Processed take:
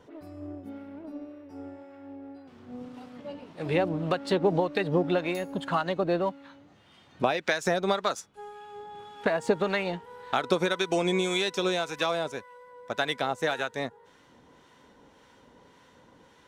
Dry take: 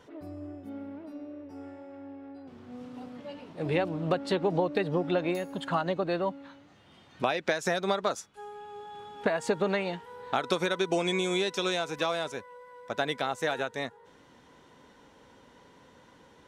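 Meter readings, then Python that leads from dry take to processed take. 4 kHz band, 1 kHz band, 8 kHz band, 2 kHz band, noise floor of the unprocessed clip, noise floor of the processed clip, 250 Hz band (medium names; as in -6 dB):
+1.5 dB, +1.5 dB, +1.0 dB, +2.0 dB, -58 dBFS, -59 dBFS, +2.0 dB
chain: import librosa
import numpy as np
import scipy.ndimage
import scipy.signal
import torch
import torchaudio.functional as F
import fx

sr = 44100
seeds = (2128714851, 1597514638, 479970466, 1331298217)

p1 = fx.harmonic_tremolo(x, sr, hz=1.8, depth_pct=50, crossover_hz=940.0)
p2 = np.sign(p1) * np.maximum(np.abs(p1) - 10.0 ** (-44.0 / 20.0), 0.0)
p3 = p1 + (p2 * librosa.db_to_amplitude(-9.5))
y = p3 * librosa.db_to_amplitude(2.0)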